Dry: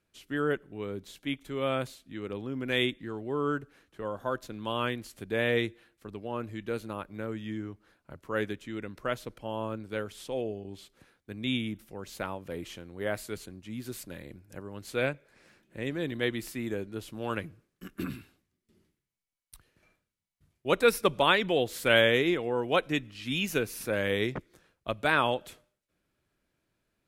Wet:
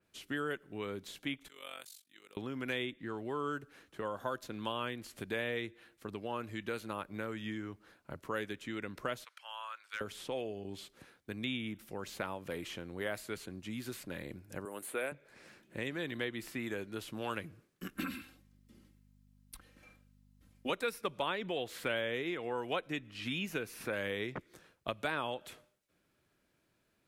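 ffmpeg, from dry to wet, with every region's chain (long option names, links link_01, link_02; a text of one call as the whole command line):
ffmpeg -i in.wav -filter_complex "[0:a]asettb=1/sr,asplit=3[link_01][link_02][link_03];[link_01]atrim=end=1.484[link_04];[link_02]atrim=start=1.48:end=2.37,asetpts=PTS-STARTPTS,afade=type=in:duration=0.004:curve=qsin,afade=type=out:start_time=0.886:duration=0.004:curve=qsin,tremolo=f=47:d=0.857,aderivative[link_05];[link_03]atrim=start=2.366[link_06];[link_04][link_05]acrossfade=duration=0.004:curve1=hsin:curve2=qsin[link_07];[link_07][link_06]acrossfade=duration=0.004:curve1=qsin:curve2=hsin,asettb=1/sr,asplit=3[link_08][link_09][link_10];[link_08]atrim=end=9.244[link_11];[link_09]atrim=start=9.24:end=10.01,asetpts=PTS-STARTPTS,afade=type=in:duration=0.004:curve=qsin,afade=type=out:start_time=0.766:duration=0.004:curve=qsin,highpass=frequency=1200:width=0.5412,highpass=frequency=1200:width=1.3066,highshelf=frequency=11000:gain=-11,volume=30.5dB,asoftclip=hard,volume=-30.5dB[link_12];[link_10]atrim=start=10.006[link_13];[link_11][link_12]acrossfade=duration=0.004:curve1=hsin:curve2=qsin[link_14];[link_14][link_13]acrossfade=duration=0.004:curve1=qsin:curve2=hsin,asettb=1/sr,asplit=3[link_15][link_16][link_17];[link_15]atrim=end=14.654[link_18];[link_16]atrim=start=14.65:end=15.12,asetpts=PTS-STARTPTS,afade=type=in:duration=0.004:curve=qsin,afade=type=out:start_time=0.466:duration=0.004:curve=qsin,highpass=340,highshelf=frequency=7100:width_type=q:width=3:gain=12.5[link_19];[link_17]atrim=start=15.116[link_20];[link_18][link_19]acrossfade=duration=0.004:curve1=hsin:curve2=qsin[link_21];[link_21][link_20]acrossfade=duration=0.004:curve1=qsin:curve2=hsin,asettb=1/sr,asplit=3[link_22][link_23][link_24];[link_22]atrim=end=17.954[link_25];[link_23]atrim=start=17.95:end=20.7,asetpts=PTS-STARTPTS,afade=type=in:duration=0.004:curve=qsin,afade=type=out:start_time=2.746:duration=0.004:curve=qsin,aecho=1:1:3.8:0.96,atrim=end_sample=121275,aeval=exprs='val(0)+0.000708*(sin(2*PI*50*n/s)+sin(2*PI*2*50*n/s)/2+sin(2*PI*3*50*n/s)/3+sin(2*PI*4*50*n/s)/4+sin(2*PI*5*50*n/s)/5)':channel_layout=same[link_26];[link_24]atrim=start=20.696[link_27];[link_25][link_26]acrossfade=duration=0.004:curve1=hsin:curve2=qsin[link_28];[link_28][link_27]acrossfade=duration=0.004:curve1=qsin:curve2=hsin,lowshelf=frequency=60:gain=-10,acrossover=split=880|3200[link_29][link_30][link_31];[link_29]acompressor=threshold=-42dB:ratio=4[link_32];[link_30]acompressor=threshold=-43dB:ratio=4[link_33];[link_31]acompressor=threshold=-52dB:ratio=4[link_34];[link_32][link_33][link_34]amix=inputs=3:normalize=0,adynamicequalizer=threshold=0.00224:dfrequency=3000:dqfactor=0.7:tfrequency=3000:tqfactor=0.7:attack=5:release=100:ratio=0.375:range=1.5:mode=cutabove:tftype=highshelf,volume=3dB" out.wav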